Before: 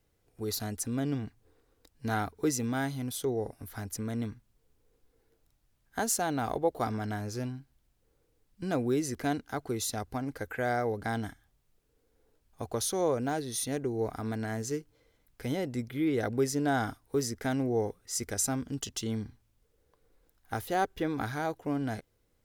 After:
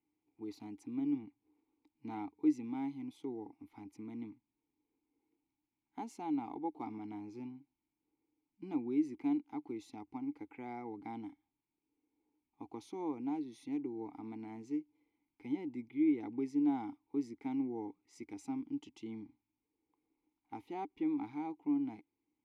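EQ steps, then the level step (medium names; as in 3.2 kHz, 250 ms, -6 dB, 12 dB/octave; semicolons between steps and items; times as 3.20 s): vowel filter u; +2.0 dB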